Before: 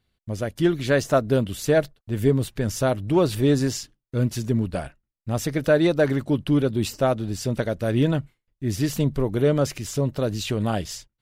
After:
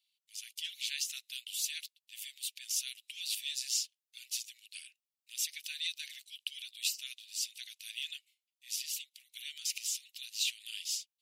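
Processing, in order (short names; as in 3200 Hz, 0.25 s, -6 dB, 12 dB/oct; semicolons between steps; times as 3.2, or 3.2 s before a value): 8.72–9.35 compressor 10:1, threshold -23 dBFS, peak gain reduction 7.5 dB; steep high-pass 2500 Hz 48 dB/oct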